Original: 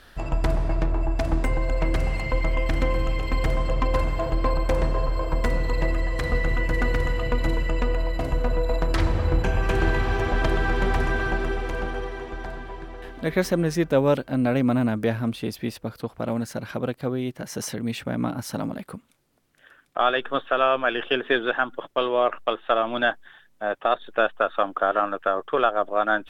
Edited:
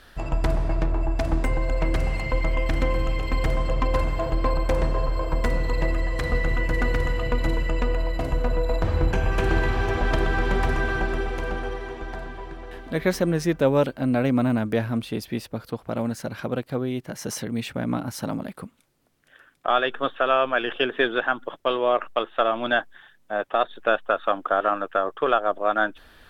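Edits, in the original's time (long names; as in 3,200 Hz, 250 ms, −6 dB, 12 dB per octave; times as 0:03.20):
0:08.84–0:09.15: remove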